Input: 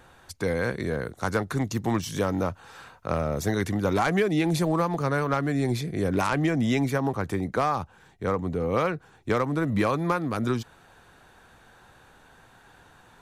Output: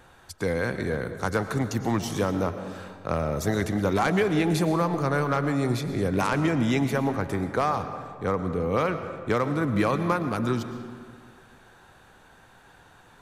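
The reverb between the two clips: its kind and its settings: algorithmic reverb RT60 2 s, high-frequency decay 0.6×, pre-delay 75 ms, DRR 9 dB

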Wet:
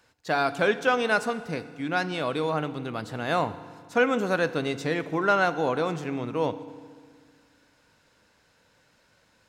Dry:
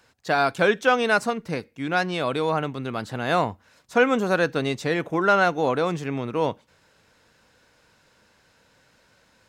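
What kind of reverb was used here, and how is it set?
FDN reverb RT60 1.8 s, low-frequency decay 1.2×, high-frequency decay 0.9×, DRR 12.5 dB; trim -3.5 dB

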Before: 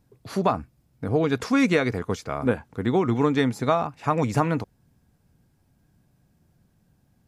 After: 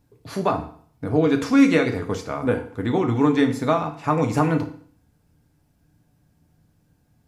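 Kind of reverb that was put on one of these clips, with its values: FDN reverb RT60 0.53 s, low-frequency decay 1×, high-frequency decay 0.95×, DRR 4 dB

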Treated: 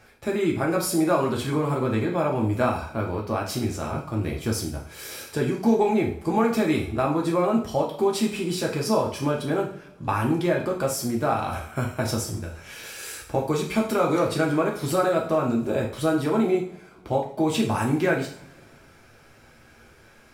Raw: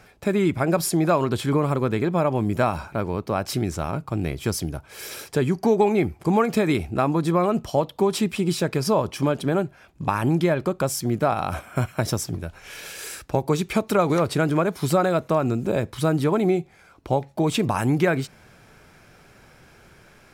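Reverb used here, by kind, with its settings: two-slope reverb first 0.46 s, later 2.3 s, from -25 dB, DRR -1.5 dB; trim -5 dB

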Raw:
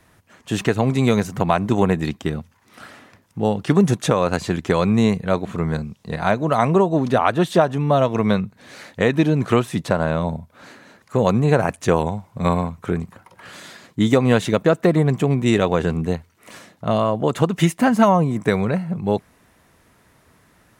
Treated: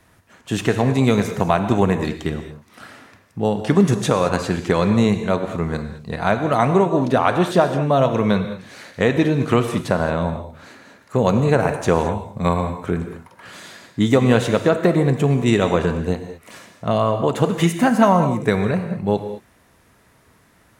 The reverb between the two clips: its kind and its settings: gated-style reverb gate 240 ms flat, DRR 7 dB

